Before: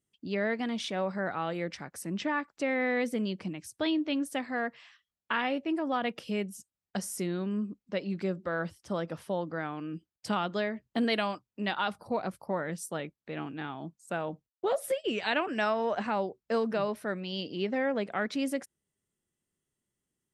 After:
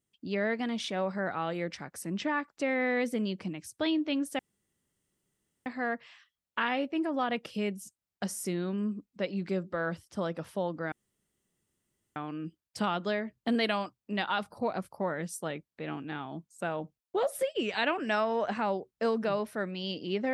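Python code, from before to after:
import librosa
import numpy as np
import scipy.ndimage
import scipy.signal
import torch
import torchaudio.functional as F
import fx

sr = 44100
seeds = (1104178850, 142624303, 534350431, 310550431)

y = fx.edit(x, sr, fx.insert_room_tone(at_s=4.39, length_s=1.27),
    fx.insert_room_tone(at_s=9.65, length_s=1.24), tone=tone)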